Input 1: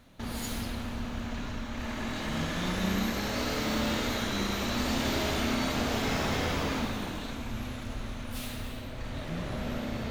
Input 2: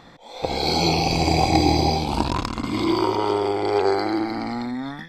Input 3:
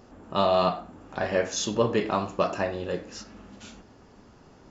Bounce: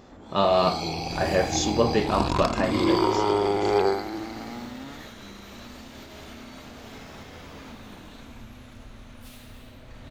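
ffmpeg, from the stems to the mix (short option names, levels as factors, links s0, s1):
-filter_complex "[0:a]alimiter=level_in=1.26:limit=0.0631:level=0:latency=1:release=299,volume=0.794,adelay=900,volume=0.447[s0];[1:a]volume=0.891,afade=t=in:st=1.85:d=0.57:silence=0.334965,afade=t=out:st=3.82:d=0.21:silence=0.334965[s1];[2:a]volume=1.19[s2];[s0][s1][s2]amix=inputs=3:normalize=0"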